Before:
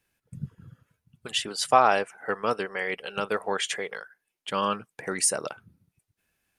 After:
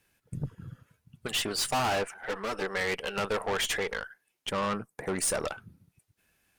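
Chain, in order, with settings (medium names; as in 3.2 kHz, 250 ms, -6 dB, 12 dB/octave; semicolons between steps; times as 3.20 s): 4.49–5.25 s: peaking EQ 3.1 kHz -13 dB 1.7 oct; valve stage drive 32 dB, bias 0.45; 2.14–2.62 s: touch-sensitive flanger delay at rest 11.6 ms, full sweep at -23 dBFS; trim +6.5 dB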